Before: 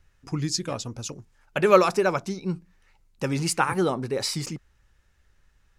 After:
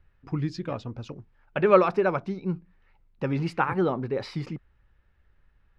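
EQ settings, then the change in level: distance through air 360 m; 0.0 dB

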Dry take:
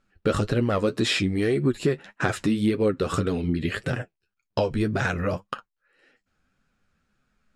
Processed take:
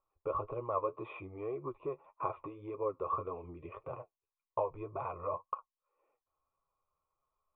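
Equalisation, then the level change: cascade formant filter a; static phaser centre 1.1 kHz, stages 8; +9.5 dB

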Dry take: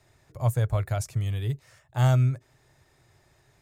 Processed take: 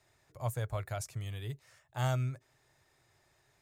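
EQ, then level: bass shelf 370 Hz -7.5 dB; -5.0 dB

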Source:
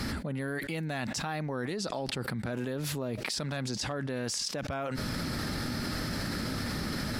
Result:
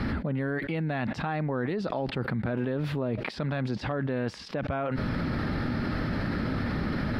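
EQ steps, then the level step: distance through air 400 m; treble shelf 9.8 kHz +6 dB; +5.5 dB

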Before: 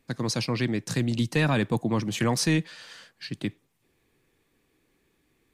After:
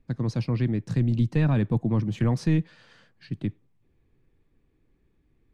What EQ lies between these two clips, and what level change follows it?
RIAA curve playback; -6.5 dB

